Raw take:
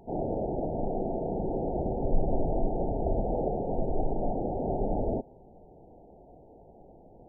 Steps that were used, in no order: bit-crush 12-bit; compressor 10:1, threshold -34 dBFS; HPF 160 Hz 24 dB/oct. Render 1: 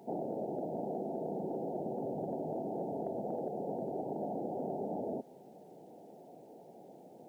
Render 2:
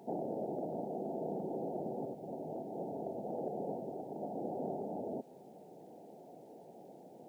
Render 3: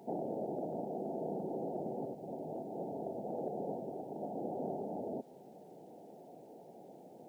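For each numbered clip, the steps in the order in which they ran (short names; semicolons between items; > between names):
HPF > compressor > bit-crush; compressor > bit-crush > HPF; compressor > HPF > bit-crush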